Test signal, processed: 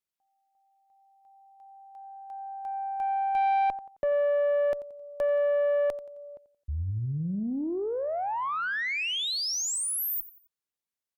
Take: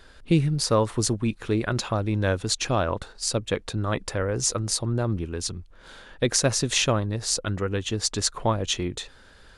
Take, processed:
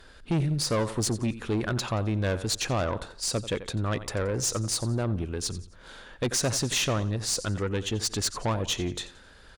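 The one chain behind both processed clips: feedback echo 88 ms, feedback 38%, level -17 dB; tube stage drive 21 dB, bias 0.2

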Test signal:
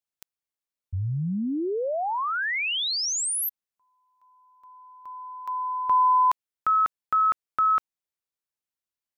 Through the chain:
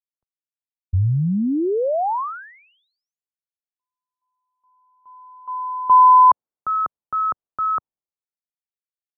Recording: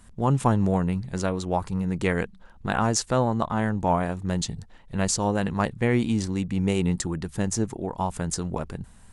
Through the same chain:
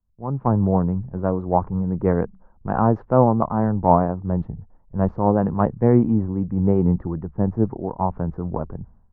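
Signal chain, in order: LPF 1100 Hz 24 dB/oct; AGC gain up to 8.5 dB; three-band expander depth 70%; gain -2 dB

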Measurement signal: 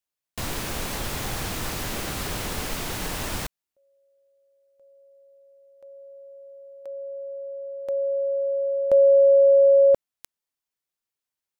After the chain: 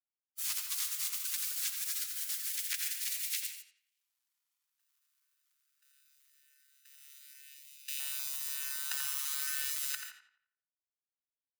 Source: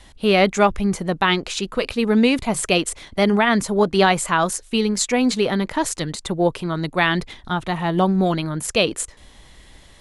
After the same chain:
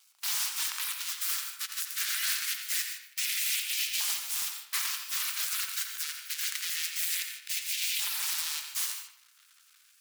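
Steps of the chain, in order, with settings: half-waves squared off; spectral gate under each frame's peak -30 dB weak; gate -48 dBFS, range -10 dB; in parallel at +3 dB: limiter -15.5 dBFS; on the sum: wrapped overs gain 13 dB; vibrato 0.47 Hz 6.1 cents; LFO high-pass saw up 0.25 Hz 830–2500 Hz; passive tone stack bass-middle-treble 6-0-2; on a send: darkening echo 86 ms, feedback 41%, low-pass 3600 Hz, level -6 dB; on the sum: non-linear reverb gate 0.17 s rising, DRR 8 dB; gain +9 dB

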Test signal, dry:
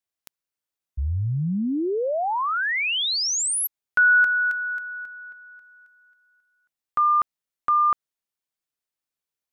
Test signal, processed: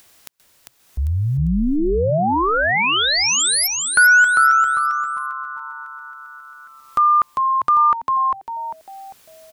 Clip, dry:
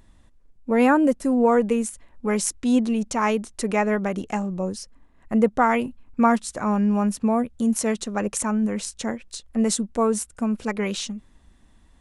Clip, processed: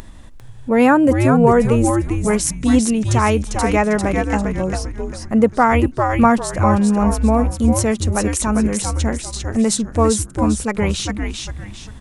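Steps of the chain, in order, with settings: upward compressor, threshold -32 dBFS; frequency-shifting echo 0.398 s, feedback 34%, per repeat -140 Hz, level -4 dB; gain +5 dB

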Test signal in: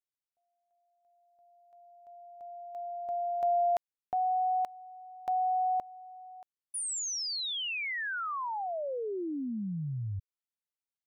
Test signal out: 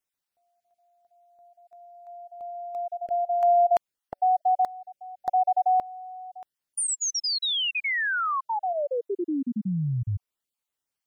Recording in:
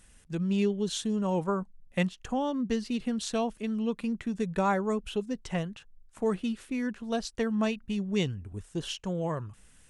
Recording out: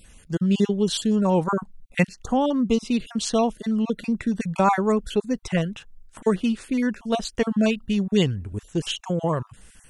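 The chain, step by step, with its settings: random spectral dropouts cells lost 22%; gain +8.5 dB

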